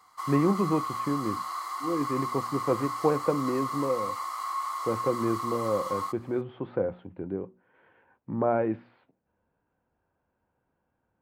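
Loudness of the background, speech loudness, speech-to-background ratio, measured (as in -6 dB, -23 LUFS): -33.5 LUFS, -30.0 LUFS, 3.5 dB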